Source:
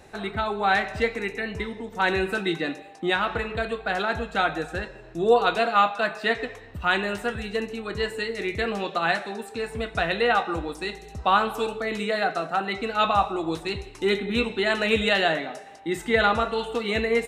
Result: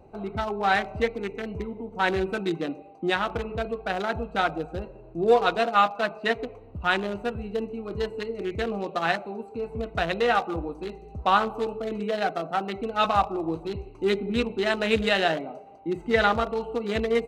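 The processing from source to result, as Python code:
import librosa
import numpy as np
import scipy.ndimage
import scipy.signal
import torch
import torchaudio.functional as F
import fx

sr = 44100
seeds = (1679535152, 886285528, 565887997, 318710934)

y = fx.wiener(x, sr, points=25)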